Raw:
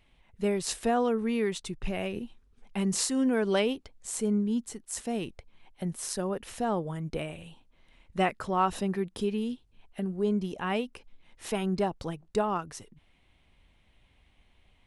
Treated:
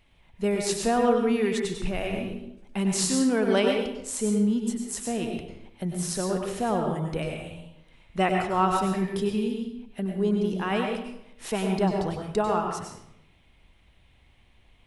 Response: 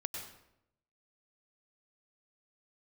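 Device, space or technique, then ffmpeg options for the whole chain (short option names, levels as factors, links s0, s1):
bathroom: -filter_complex "[1:a]atrim=start_sample=2205[s0];[0:a][s0]afir=irnorm=-1:irlink=0,volume=1.58"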